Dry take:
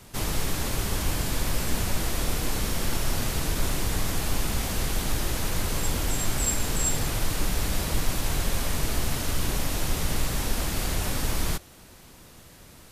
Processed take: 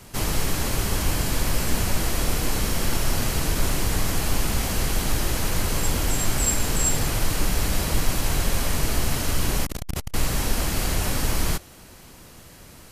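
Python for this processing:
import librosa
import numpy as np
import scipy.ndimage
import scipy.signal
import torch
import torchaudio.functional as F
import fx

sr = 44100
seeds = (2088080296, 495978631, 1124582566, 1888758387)

y = fx.notch(x, sr, hz=3600.0, q=19.0)
y = fx.transformer_sat(y, sr, knee_hz=240.0, at=(9.65, 10.14))
y = y * librosa.db_to_amplitude(3.5)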